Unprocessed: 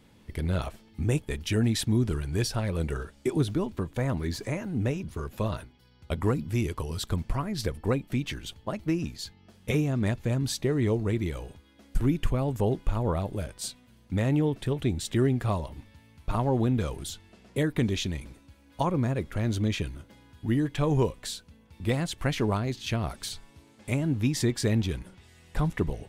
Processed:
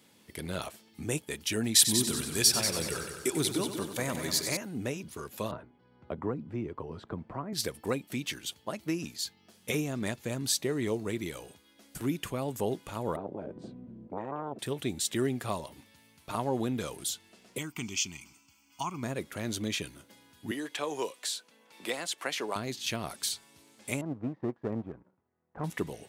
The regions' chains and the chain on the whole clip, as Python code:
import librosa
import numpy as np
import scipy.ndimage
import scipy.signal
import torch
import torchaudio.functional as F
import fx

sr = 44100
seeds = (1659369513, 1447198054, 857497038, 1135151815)

y = fx.chain(x, sr, fx.high_shelf(hz=2400.0, db=8.0),
    fx.echo_heads(ms=94, heads='first and second', feedback_pct=48, wet_db=-10), at=(1.74, 4.57))
y = fx.chain(y, sr, fx.lowpass(hz=1100.0, slope=12),
    fx.band_squash(depth_pct=40), at=(5.51, 7.53))
y = fx.chain(y, sr, fx.lowpass_res(hz=190.0, q=1.8),
    fx.tube_stage(drive_db=20.0, bias=0.3),
    fx.spectral_comp(ratio=10.0), at=(13.16, 14.59))
y = fx.chain(y, sr, fx.tilt_shelf(db=-4.0, hz=1300.0),
    fx.fixed_phaser(hz=2600.0, stages=8), at=(17.58, 19.03))
y = fx.chain(y, sr, fx.highpass(hz=420.0, slope=12),
    fx.high_shelf(hz=11000.0, db=-8.5),
    fx.band_squash(depth_pct=40), at=(20.51, 22.56))
y = fx.chain(y, sr, fx.lowpass(hz=1200.0, slope=24),
    fx.power_curve(exponent=1.4), at=(24.01, 25.64))
y = scipy.signal.sosfilt(scipy.signal.bessel(2, 220.0, 'highpass', norm='mag', fs=sr, output='sos'), y)
y = fx.high_shelf(y, sr, hz=4100.0, db=11.0)
y = F.gain(torch.from_numpy(y), -3.0).numpy()